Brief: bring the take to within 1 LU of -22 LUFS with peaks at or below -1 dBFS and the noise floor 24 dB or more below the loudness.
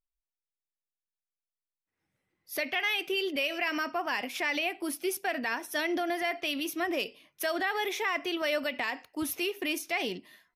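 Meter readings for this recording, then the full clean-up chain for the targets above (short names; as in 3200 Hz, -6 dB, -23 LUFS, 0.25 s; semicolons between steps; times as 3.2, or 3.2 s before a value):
loudness -31.0 LUFS; peak -19.0 dBFS; loudness target -22.0 LUFS
-> gain +9 dB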